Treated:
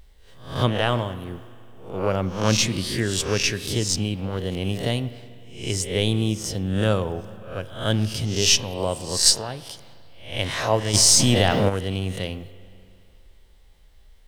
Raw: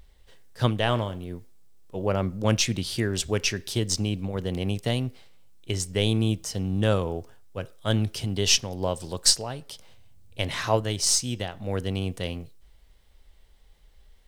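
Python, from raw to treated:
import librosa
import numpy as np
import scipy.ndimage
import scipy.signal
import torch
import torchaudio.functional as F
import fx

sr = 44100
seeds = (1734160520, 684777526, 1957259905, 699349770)

y = fx.spec_swells(x, sr, rise_s=0.47)
y = fx.rev_spring(y, sr, rt60_s=2.5, pass_ms=(37, 42), chirp_ms=45, drr_db=14.5)
y = fx.env_flatten(y, sr, amount_pct=70, at=(10.93, 11.68), fade=0.02)
y = F.gain(torch.from_numpy(y), 1.0).numpy()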